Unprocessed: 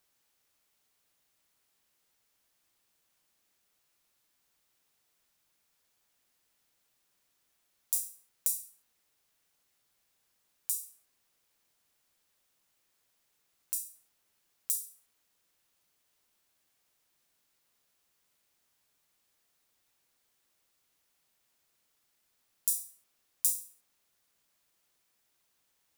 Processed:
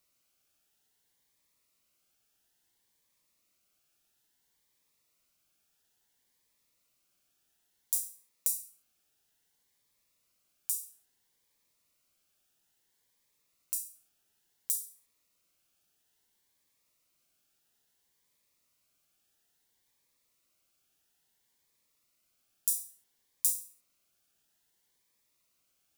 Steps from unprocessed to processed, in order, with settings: 8.03–8.48 s: high-pass 51 Hz -> 220 Hz; Shepard-style phaser rising 0.59 Hz

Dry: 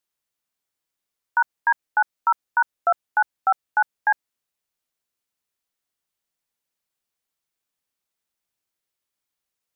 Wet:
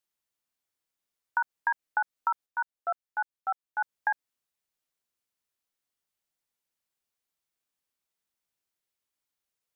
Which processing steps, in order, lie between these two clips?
compression 6:1, threshold -20 dBFS, peak gain reduction 6 dB; 2.46–3.81 s: gate -22 dBFS, range -8 dB; trim -3.5 dB

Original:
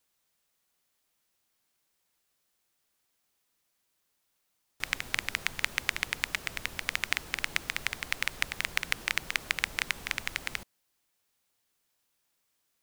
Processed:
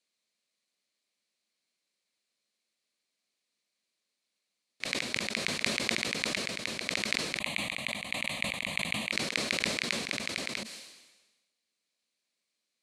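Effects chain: cabinet simulation 190–9600 Hz, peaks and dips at 220 Hz +7 dB, 560 Hz +4 dB, 860 Hz -8 dB, 1.4 kHz -5 dB, 2.3 kHz +6 dB, 4.2 kHz +9 dB; 7.39–9.12 s: static phaser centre 1.5 kHz, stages 6; decay stretcher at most 50 dB/s; trim -6 dB

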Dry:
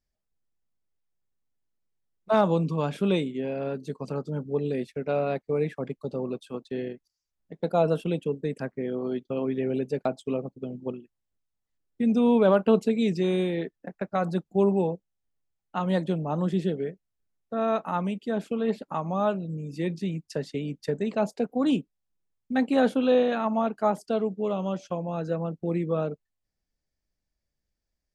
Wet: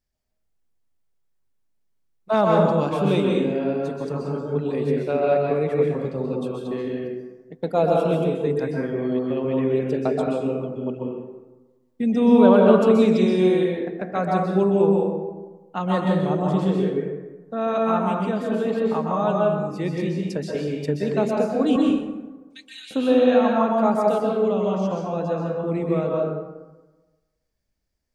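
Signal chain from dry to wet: 21.76–22.91 s: inverse Chebyshev high-pass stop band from 480 Hz, stop band 80 dB; plate-style reverb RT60 1.2 s, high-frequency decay 0.5×, pre-delay 115 ms, DRR -2 dB; trim +1.5 dB

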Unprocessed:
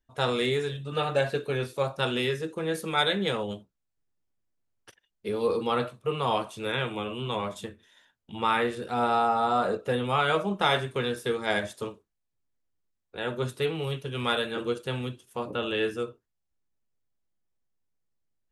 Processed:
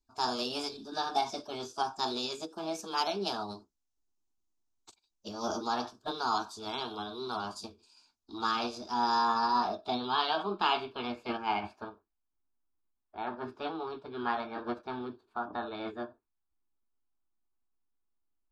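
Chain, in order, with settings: formant shift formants +5 st; low-pass sweep 6.5 kHz -> 1.9 kHz, 8.47–11.99 s; static phaser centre 530 Hz, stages 6; trim -2 dB

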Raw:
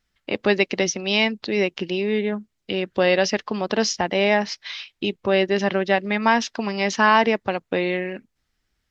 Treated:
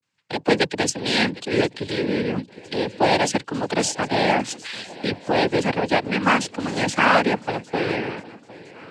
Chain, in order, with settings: octave divider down 2 oct, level -1 dB; vibrato 0.36 Hz 78 cents; shuffle delay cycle 1010 ms, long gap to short 3:1, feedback 36%, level -20 dB; noise-vocoded speech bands 8

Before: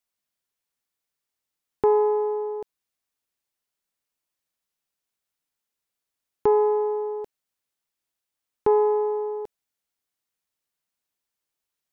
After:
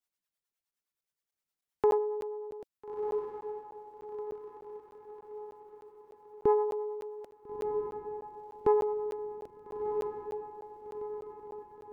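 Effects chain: 1.98–2.60 s: low-pass 1.6 kHz 6 dB/octave; reverb removal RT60 0.74 s; harmonic tremolo 9.6 Hz, depth 70%, crossover 440 Hz; echo that smears into a reverb 1352 ms, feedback 52%, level -6 dB; crackling interface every 0.30 s, samples 512, zero, from 0.71 s; trim -1.5 dB

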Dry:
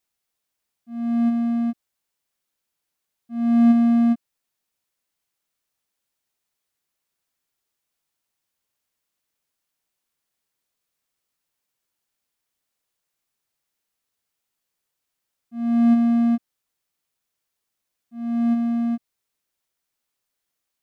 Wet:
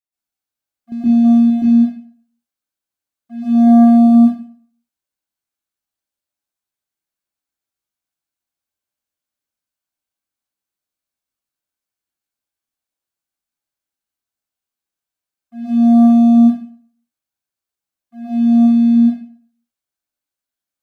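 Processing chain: waveshaping leveller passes 3; 0.92–1.50 s: reverse; 3.55–3.95 s: small resonant body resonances 460/780/1600 Hz, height 11 dB; reverberation RT60 0.50 s, pre-delay 117 ms, DRR -9.5 dB; trim -10 dB

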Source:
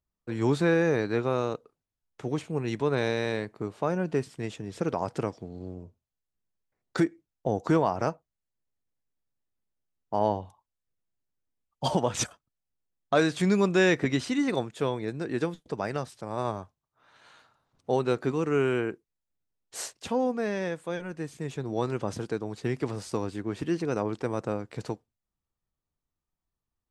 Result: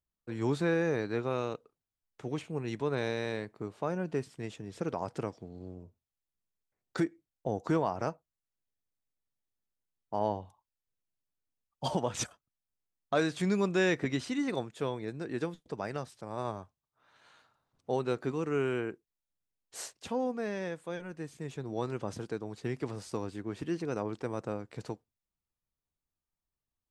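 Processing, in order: 1.30–2.50 s: dynamic bell 2.6 kHz, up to +5 dB, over -53 dBFS, Q 1.7; trim -5.5 dB

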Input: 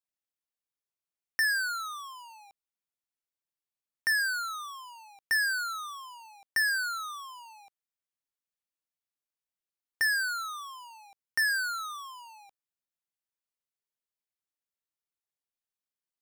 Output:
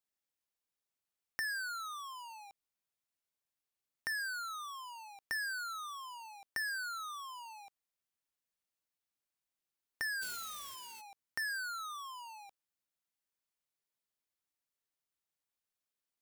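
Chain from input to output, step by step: 10.21–11.00 s: formants flattened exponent 0.1; compression 2:1, threshold -48 dBFS, peak gain reduction 12 dB; trim +1 dB

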